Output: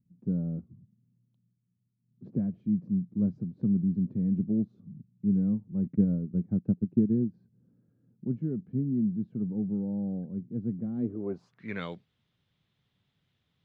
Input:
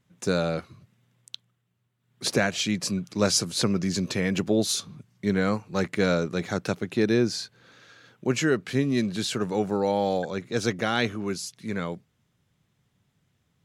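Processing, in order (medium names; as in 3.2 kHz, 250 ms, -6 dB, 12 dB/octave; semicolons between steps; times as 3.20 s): 5.86–7.34 s: transient shaper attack +7 dB, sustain -6 dB; low-pass sweep 210 Hz -> 3.7 kHz, 10.95–11.86 s; trim -6.5 dB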